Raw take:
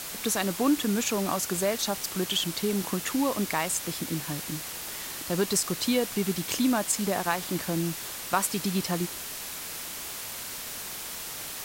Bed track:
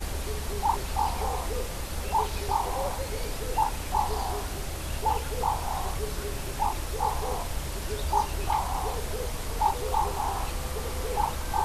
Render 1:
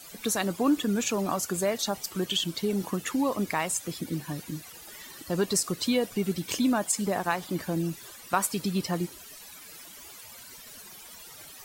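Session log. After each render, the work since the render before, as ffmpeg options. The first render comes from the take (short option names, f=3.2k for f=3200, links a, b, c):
-af "afftdn=nr=15:nf=-38"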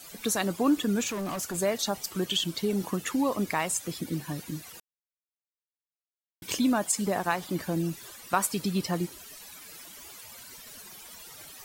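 -filter_complex "[0:a]asettb=1/sr,asplit=3[a][b][c];[a]atrim=end=1.074[d];[b]atrim=start=1.07:end=1.55,asetpts=PTS-STARTPTS,afade=t=in:d=0.004:c=qsin,afade=t=out:st=0.476:d=0.004:c=qsin,volume=30dB,asoftclip=hard,volume=-30dB[e];[c]atrim=start=1.546[f];[d][e]acrossfade=d=0.004:c1=hsin:c2=qsin[g];[g][f]acrossfade=d=0.004:c1=qsin:c2=hsin,asplit=3[h][i][j];[h]atrim=end=4.8,asetpts=PTS-STARTPTS,afade=t=out:st=4.796:d=0.004:c=hsin[k];[i]atrim=start=4.8:end=6.42,asetpts=PTS-STARTPTS,volume=0[l];[j]atrim=start=6.42,asetpts=PTS-STARTPTS,afade=t=in:d=0.004:c=hsin[m];[k][l][m]concat=n=3:v=0:a=1"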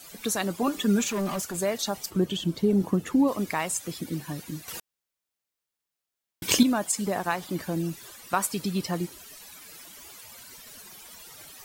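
-filter_complex "[0:a]asettb=1/sr,asplit=3[a][b][c];[a]atrim=end=0.624[d];[b]atrim=start=0.62:end=1.42,asetpts=PTS-STARTPTS,afade=t=in:d=0.004:c=qsin,afade=t=out:st=0.796:d=0.004:c=qsin,aecho=1:1:5:0.81,atrim=end_sample=35280[e];[c]atrim=start=1.416[f];[d][e]acrossfade=d=0.004:c1=hsin:c2=qsin[g];[g][f]acrossfade=d=0.004:c1=qsin:c2=hsin,asplit=3[h][i][j];[h]afade=t=out:st=2.09:d=0.02[k];[i]tiltshelf=f=840:g=7.5,afade=t=in:st=2.09:d=0.02,afade=t=out:st=3.27:d=0.02[l];[j]afade=t=in:st=3.27:d=0.02[m];[k][l][m]amix=inputs=3:normalize=0,asplit=3[n][o][p];[n]atrim=end=4.682[q];[o]atrim=start=4.678:end=6.632,asetpts=PTS-STARTPTS,volume=9dB[r];[p]atrim=start=6.628[s];[q][r]acrossfade=d=0.004:c1=hsin:c2=hsin[t];[t][s]acrossfade=d=0.004:c1=hsin:c2=hsin"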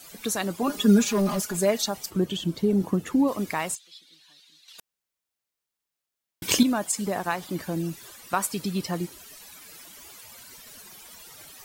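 -filter_complex "[0:a]asettb=1/sr,asplit=3[a][b][c];[a]atrim=end=0.694[d];[b]atrim=start=0.69:end=1.86,asetpts=PTS-STARTPTS,afade=t=in:d=0.004:c=qsin,afade=t=out:st=1.166:d=0.004:c=qsin,aecho=1:1:4.8:0.95,atrim=end_sample=51597[e];[c]atrim=start=1.856[f];[d][e]acrossfade=d=0.004:c1=hsin:c2=qsin[g];[g][f]acrossfade=d=0.004:c1=qsin:c2=hsin,asplit=3[h][i][j];[h]afade=t=out:st=3.74:d=0.02[k];[i]bandpass=f=3.8k:t=q:w=3.9,afade=t=in:st=3.74:d=0.02,afade=t=out:st=4.78:d=0.02[l];[j]afade=t=in:st=4.78:d=0.02[m];[k][l][m]amix=inputs=3:normalize=0"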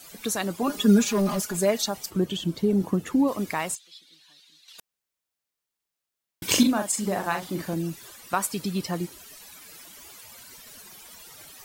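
-filter_complex "[0:a]asettb=1/sr,asplit=3[a][b][c];[a]atrim=end=6.454[d];[b]atrim=start=6.45:end=7.74,asetpts=PTS-STARTPTS,afade=t=in:d=0.004:c=qsin,afade=t=out:st=1.286:d=0.004:c=qsin,asplit=2[e][f];[f]adelay=42,volume=-6dB[g];[e][g]amix=inputs=2:normalize=0,atrim=end_sample=56889[h];[c]atrim=start=7.736[i];[d][h]acrossfade=d=0.004:c1=hsin:c2=qsin[j];[j][i]acrossfade=d=0.004:c1=qsin:c2=hsin"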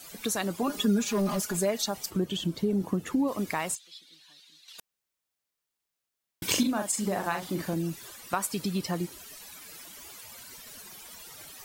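-af "acompressor=threshold=-27dB:ratio=2"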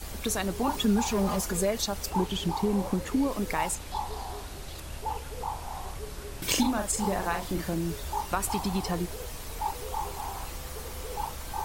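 -filter_complex "[1:a]volume=-7dB[a];[0:a][a]amix=inputs=2:normalize=0"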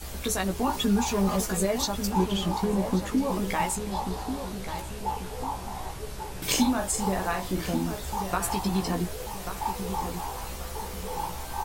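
-filter_complex "[0:a]asplit=2[a][b];[b]adelay=16,volume=-5dB[c];[a][c]amix=inputs=2:normalize=0,asplit=2[d][e];[e]adelay=1138,lowpass=f=1.9k:p=1,volume=-8dB,asplit=2[f][g];[g]adelay=1138,lowpass=f=1.9k:p=1,volume=0.38,asplit=2[h][i];[i]adelay=1138,lowpass=f=1.9k:p=1,volume=0.38,asplit=2[j][k];[k]adelay=1138,lowpass=f=1.9k:p=1,volume=0.38[l];[d][f][h][j][l]amix=inputs=5:normalize=0"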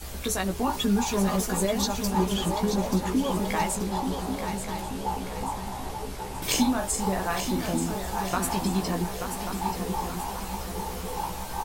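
-af "aecho=1:1:882|1764|2646|3528|4410|5292:0.398|0.191|0.0917|0.044|0.0211|0.0101"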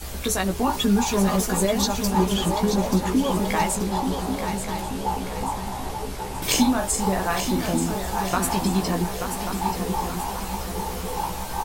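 -af "volume=4dB"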